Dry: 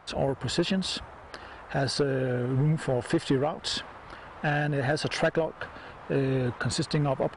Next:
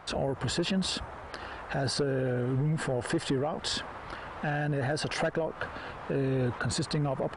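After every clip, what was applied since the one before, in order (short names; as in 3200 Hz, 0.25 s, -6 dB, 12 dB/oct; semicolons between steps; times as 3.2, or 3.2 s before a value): dynamic EQ 3400 Hz, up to -4 dB, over -42 dBFS, Q 0.77; limiter -25.5 dBFS, peak gain reduction 8.5 dB; gain +3.5 dB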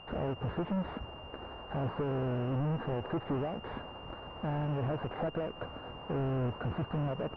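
half-waves squared off; pulse-width modulation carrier 2800 Hz; gain -7 dB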